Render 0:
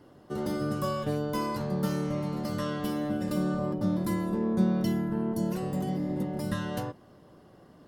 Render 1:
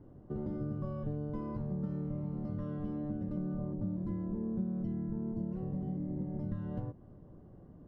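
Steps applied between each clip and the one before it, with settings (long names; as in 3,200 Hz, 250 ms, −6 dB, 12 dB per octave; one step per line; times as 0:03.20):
low-pass filter 1,700 Hz 6 dB per octave
spectral tilt −4.5 dB per octave
downward compressor 3 to 1, threshold −27 dBFS, peak gain reduction 13 dB
level −9 dB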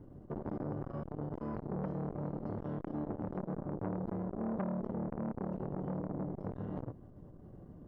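saturating transformer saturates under 710 Hz
level +3 dB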